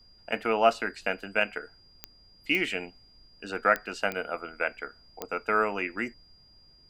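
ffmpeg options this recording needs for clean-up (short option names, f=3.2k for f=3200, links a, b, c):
-af "adeclick=t=4,bandreject=f=4.8k:w=30,agate=range=-21dB:threshold=-50dB"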